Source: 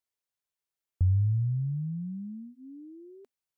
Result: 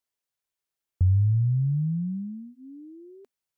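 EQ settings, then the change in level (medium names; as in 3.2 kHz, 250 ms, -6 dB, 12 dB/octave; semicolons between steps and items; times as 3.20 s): dynamic bell 160 Hz, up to +5 dB, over -42 dBFS, Q 1.4; +2.0 dB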